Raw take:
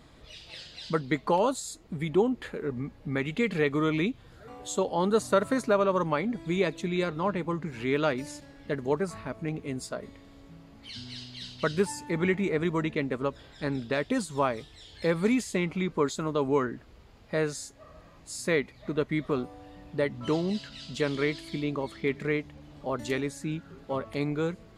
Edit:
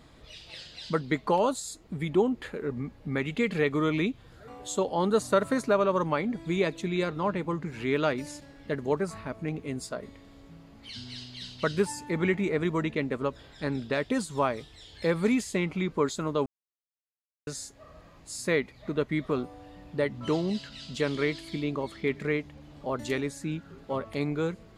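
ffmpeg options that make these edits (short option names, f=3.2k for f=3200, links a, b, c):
-filter_complex "[0:a]asplit=3[a][b][c];[a]atrim=end=16.46,asetpts=PTS-STARTPTS,afade=t=out:st=16.456:d=0.004:c=hsin[d];[b]atrim=start=16.46:end=17.47,asetpts=PTS-STARTPTS,volume=0[e];[c]atrim=start=17.47,asetpts=PTS-STARTPTS,afade=t=in:d=0.004:c=hsin[f];[d][e][f]concat=n=3:v=0:a=1"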